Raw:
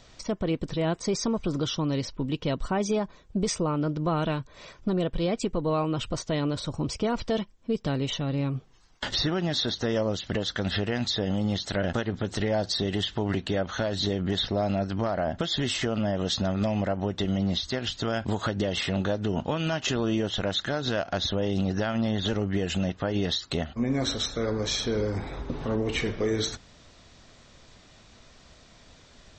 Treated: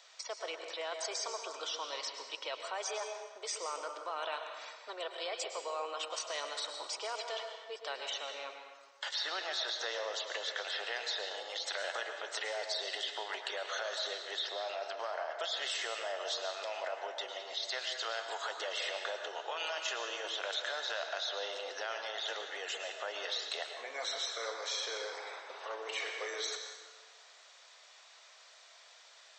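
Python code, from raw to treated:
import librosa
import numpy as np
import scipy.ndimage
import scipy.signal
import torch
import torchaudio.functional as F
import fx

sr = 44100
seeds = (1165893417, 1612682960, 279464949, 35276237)

p1 = scipy.signal.sosfilt(scipy.signal.bessel(8, 900.0, 'highpass', norm='mag', fs=sr, output='sos'), x)
p2 = fx.over_compress(p1, sr, threshold_db=-36.0, ratio=-0.5)
p3 = p1 + (p2 * librosa.db_to_amplitude(0.0))
p4 = fx.rev_plate(p3, sr, seeds[0], rt60_s=1.5, hf_ratio=0.7, predelay_ms=95, drr_db=4.5)
y = p4 * librosa.db_to_amplitude(-9.0)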